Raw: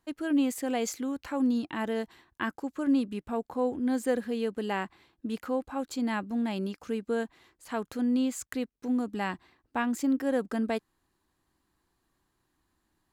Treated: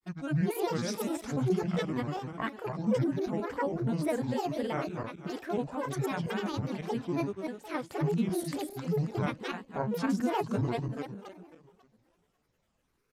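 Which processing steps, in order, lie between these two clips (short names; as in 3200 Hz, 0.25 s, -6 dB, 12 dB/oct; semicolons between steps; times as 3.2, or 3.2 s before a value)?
regenerating reverse delay 0.136 s, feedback 62%, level -3 dB; grains, spray 11 ms, pitch spread up and down by 12 st; downsampling 32000 Hz; gain -2.5 dB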